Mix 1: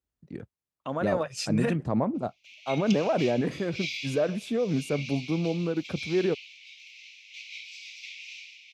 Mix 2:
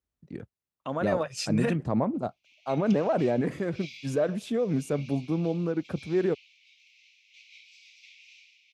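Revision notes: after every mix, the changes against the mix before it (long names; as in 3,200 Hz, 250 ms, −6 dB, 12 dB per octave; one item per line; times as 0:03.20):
background −11.0 dB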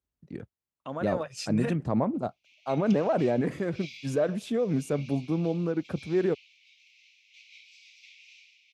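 second voice −4.0 dB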